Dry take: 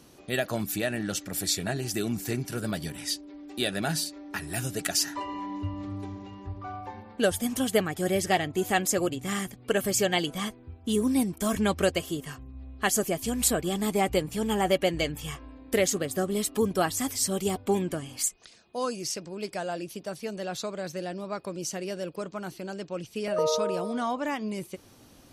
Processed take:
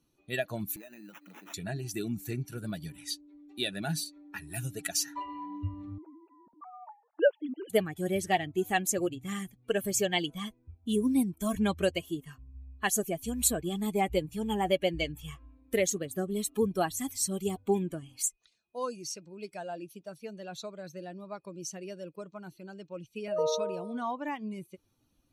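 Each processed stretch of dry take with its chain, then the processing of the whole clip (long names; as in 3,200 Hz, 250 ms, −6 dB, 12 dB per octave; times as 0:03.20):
0:00.76–0:01.54: downward compressor 5 to 1, threshold −35 dBFS + sample-rate reduction 4,400 Hz + high-pass filter 170 Hz 24 dB per octave
0:05.98–0:07.70: three sine waves on the formant tracks + low-pass filter 1,600 Hz 6 dB per octave
whole clip: spectral dynamics exaggerated over time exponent 1.5; notch filter 5,000 Hz, Q 6.5; dynamic equaliser 1,300 Hz, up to −7 dB, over −55 dBFS, Q 5.1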